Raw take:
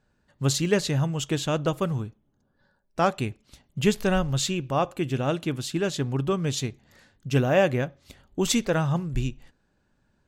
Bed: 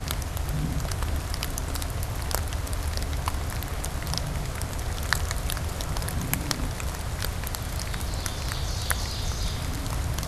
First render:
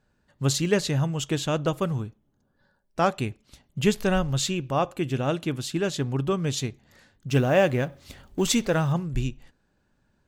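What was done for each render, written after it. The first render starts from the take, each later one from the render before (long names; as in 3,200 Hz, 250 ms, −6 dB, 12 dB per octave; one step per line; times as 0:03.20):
0:07.29–0:08.93: mu-law and A-law mismatch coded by mu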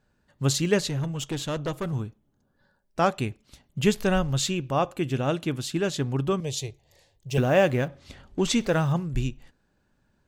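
0:00.88–0:01.93: tube saturation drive 23 dB, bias 0.45
0:06.40–0:07.38: phaser with its sweep stopped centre 580 Hz, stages 4
0:07.88–0:08.61: high-frequency loss of the air 54 metres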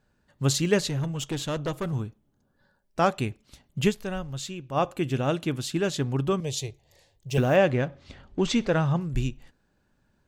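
0:03.87–0:04.78: duck −9 dB, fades 0.35 s exponential
0:07.56–0:09.01: high-frequency loss of the air 78 metres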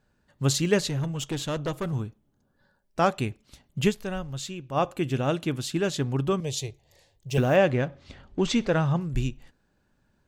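no processing that can be heard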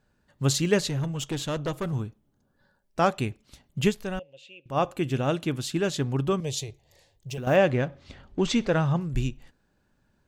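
0:04.19–0:04.66: pair of resonant band-passes 1,200 Hz, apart 2.3 octaves
0:06.63–0:07.47: downward compressor, threshold −31 dBFS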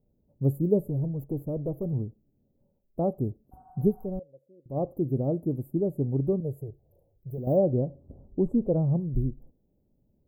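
inverse Chebyshev band-stop filter 1,900–5,800 Hz, stop band 70 dB
0:03.55–0:04.06: healed spectral selection 730–8,800 Hz after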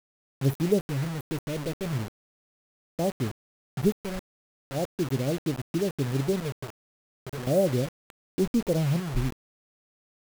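dead-zone distortion −46 dBFS
bit-depth reduction 6 bits, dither none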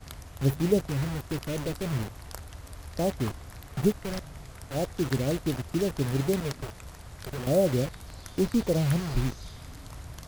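mix in bed −13.5 dB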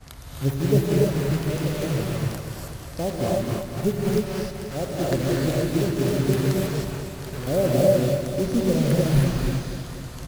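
repeating echo 243 ms, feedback 59%, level −9 dB
reverb whose tail is shaped and stops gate 340 ms rising, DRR −3 dB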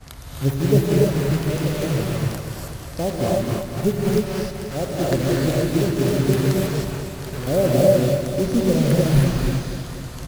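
level +3 dB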